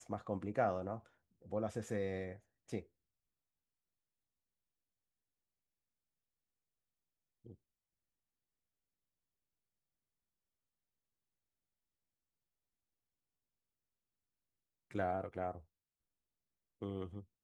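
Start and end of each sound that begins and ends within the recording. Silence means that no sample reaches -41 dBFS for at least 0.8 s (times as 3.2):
14.95–15.56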